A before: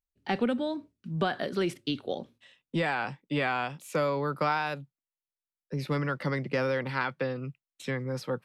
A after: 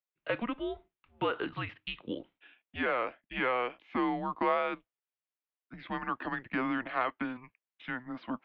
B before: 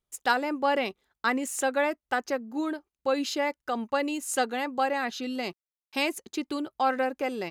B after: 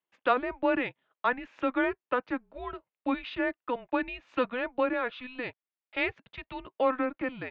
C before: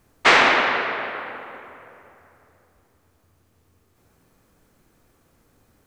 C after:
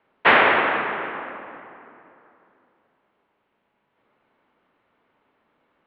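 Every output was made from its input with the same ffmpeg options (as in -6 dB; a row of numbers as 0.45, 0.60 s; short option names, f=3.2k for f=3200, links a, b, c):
-af "highpass=f=540:t=q:w=0.5412,highpass=f=540:t=q:w=1.307,lowpass=f=3.4k:t=q:w=0.5176,lowpass=f=3.4k:t=q:w=0.7071,lowpass=f=3.4k:t=q:w=1.932,afreqshift=-250"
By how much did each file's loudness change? -3.0, -2.0, -1.0 LU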